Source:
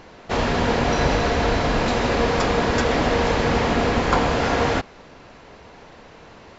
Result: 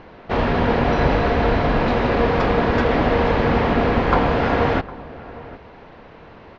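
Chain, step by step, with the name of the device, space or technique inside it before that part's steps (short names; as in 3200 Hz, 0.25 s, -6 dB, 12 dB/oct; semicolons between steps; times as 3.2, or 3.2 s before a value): shout across a valley (air absorption 290 m; outdoor echo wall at 130 m, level -18 dB); gain +3 dB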